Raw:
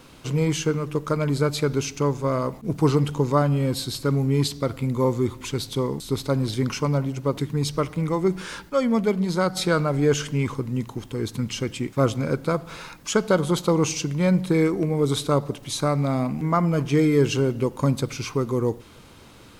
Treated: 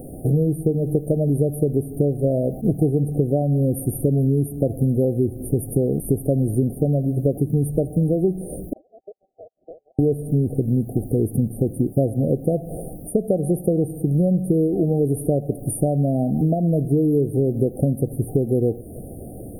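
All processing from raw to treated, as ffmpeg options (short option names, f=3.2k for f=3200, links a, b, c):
-filter_complex "[0:a]asettb=1/sr,asplit=3[a][b][c];[a]atrim=end=8.734[d];[b]atrim=start=8.73:end=9.99,asetpts=PTS-STARTPTS,afade=t=in:d=0.004:c=qsin,afade=t=out:st=1.256:d=0.004:c=qsin,agate=range=-35dB:threshold=-20dB:ratio=16:release=100:detection=peak,lowpass=f=2.3k:t=q:w=0.5098,lowpass=f=2.3k:t=q:w=0.6013,lowpass=f=2.3k:t=q:w=0.9,lowpass=f=2.3k:t=q:w=2.563,afreqshift=-2700[e];[c]atrim=start=9.986[f];[d][e]acrossfade=d=0.004:c1=hsin:c2=qsin[g];[g][f]acrossfade=d=0.004:c1=qsin:c2=hsin,acompressor=threshold=-30dB:ratio=8,afftfilt=real='re*(1-between(b*sr/4096,780,8900))':imag='im*(1-between(b*sr/4096,780,8900))':win_size=4096:overlap=0.75,acontrast=67,volume=7.5dB"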